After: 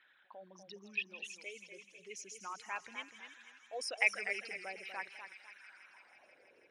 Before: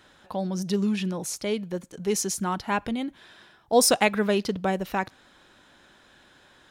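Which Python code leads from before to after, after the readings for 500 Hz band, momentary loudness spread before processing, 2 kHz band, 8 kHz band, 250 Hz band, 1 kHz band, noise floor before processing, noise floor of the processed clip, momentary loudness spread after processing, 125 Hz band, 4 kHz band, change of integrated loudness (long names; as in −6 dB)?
−22.5 dB, 12 LU, −4.5 dB, −21.0 dB, −33.0 dB, −18.0 dB, −58 dBFS, −67 dBFS, 24 LU, below −30 dB, −15.0 dB, −13.5 dB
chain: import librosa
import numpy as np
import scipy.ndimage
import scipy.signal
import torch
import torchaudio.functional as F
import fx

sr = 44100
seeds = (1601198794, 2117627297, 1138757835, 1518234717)

p1 = fx.envelope_sharpen(x, sr, power=2.0)
p2 = fx.filter_sweep_bandpass(p1, sr, from_hz=2300.0, to_hz=460.0, start_s=5.41, end_s=6.48, q=4.3)
p3 = p2 + fx.echo_wet_highpass(p2, sr, ms=162, feedback_pct=81, hz=1900.0, wet_db=-13.5, dry=0)
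p4 = fx.echo_warbled(p3, sr, ms=248, feedback_pct=33, rate_hz=2.8, cents=123, wet_db=-9.0)
y = p4 * librosa.db_to_amplitude(1.0)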